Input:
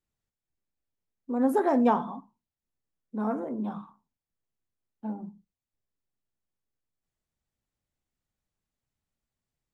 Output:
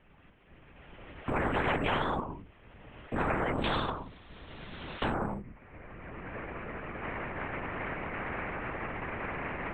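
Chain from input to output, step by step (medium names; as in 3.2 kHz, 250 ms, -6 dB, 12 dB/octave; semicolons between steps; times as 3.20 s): recorder AGC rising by 18 dB/s; steep low-pass 3 kHz 48 dB/octave, from 3.57 s 9.8 kHz, from 5.12 s 2.4 kHz; peak limiter -22.5 dBFS, peak gain reduction 10.5 dB; high-pass 44 Hz; hum notches 50/100/150/200/250 Hz; LPC vocoder at 8 kHz whisper; spectrum-flattening compressor 4:1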